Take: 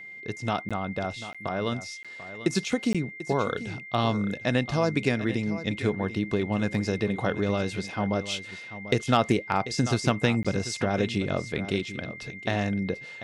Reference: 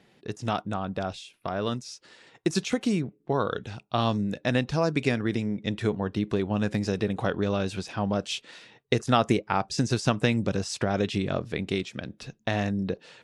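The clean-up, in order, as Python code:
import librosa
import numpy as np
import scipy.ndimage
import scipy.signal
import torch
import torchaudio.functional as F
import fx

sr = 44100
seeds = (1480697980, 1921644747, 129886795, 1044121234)

y = fx.fix_declip(x, sr, threshold_db=-11.0)
y = fx.notch(y, sr, hz=2100.0, q=30.0)
y = fx.fix_interpolate(y, sr, at_s=(0.69, 1.33, 2.03, 2.93, 10.43), length_ms=16.0)
y = fx.fix_echo_inverse(y, sr, delay_ms=741, level_db=-13.5)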